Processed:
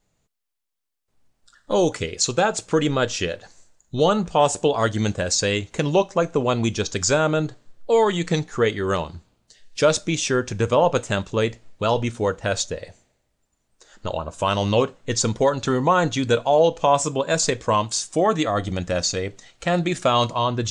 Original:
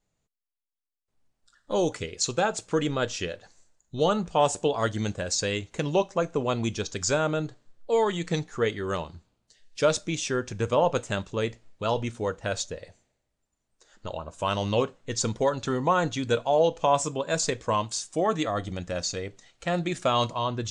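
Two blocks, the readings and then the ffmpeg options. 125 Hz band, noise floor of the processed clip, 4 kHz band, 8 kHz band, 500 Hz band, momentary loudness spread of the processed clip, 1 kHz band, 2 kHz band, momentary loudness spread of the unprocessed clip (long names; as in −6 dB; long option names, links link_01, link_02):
+6.0 dB, −72 dBFS, +6.0 dB, +6.0 dB, +5.5 dB, 8 LU, +5.5 dB, +6.0 dB, 9 LU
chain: -filter_complex "[0:a]asplit=2[link_01][link_02];[link_02]alimiter=limit=-20.5dB:level=0:latency=1:release=337,volume=-1.5dB[link_03];[link_01][link_03]amix=inputs=2:normalize=0,volume=2.5dB"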